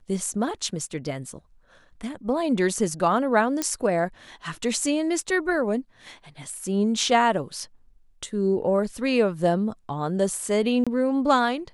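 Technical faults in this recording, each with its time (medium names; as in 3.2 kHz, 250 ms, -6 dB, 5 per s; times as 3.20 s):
3.62 s: pop -9 dBFS
10.84–10.87 s: dropout 26 ms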